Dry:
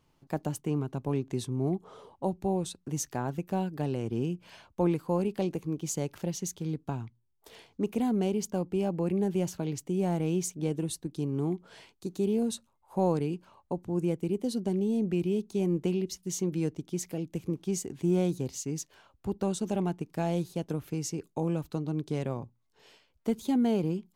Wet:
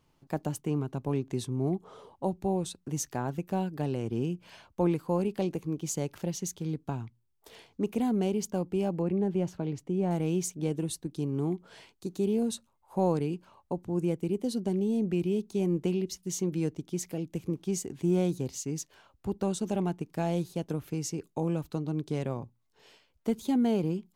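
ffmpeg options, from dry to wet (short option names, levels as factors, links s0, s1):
-filter_complex "[0:a]asettb=1/sr,asplit=3[s0][s1][s2];[s0]atrim=end=9.024[s3];[s1]atrim=start=9.02:end=10.11,asetpts=PTS-STARTPTS,afade=t=in:d=0.004:c=qsin,afade=t=out:st=1.086:d=0.004:c=qsin,lowpass=f=1900:p=1[s4];[s2]atrim=start=10.106[s5];[s3][s4]acrossfade=d=0.004:c1=hsin:c2=qsin[s6];[s6][s5]acrossfade=d=0.004:c1=qsin:c2=hsin"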